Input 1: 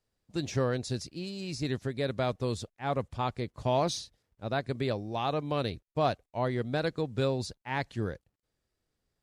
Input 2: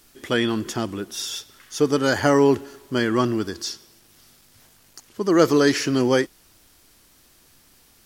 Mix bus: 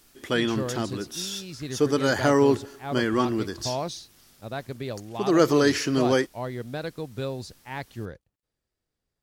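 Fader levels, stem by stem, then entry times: −2.5, −3.0 decibels; 0.00, 0.00 seconds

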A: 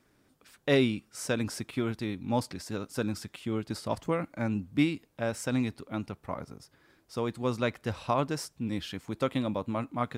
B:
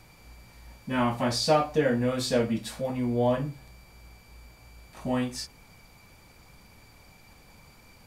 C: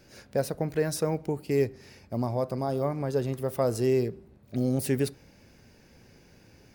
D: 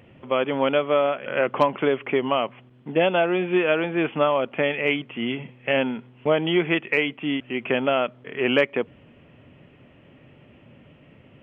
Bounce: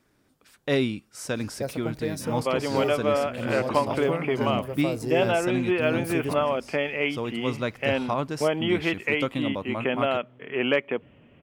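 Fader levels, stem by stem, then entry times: +0.5, −13.0, −4.0, −3.5 decibels; 0.00, 1.30, 1.25, 2.15 seconds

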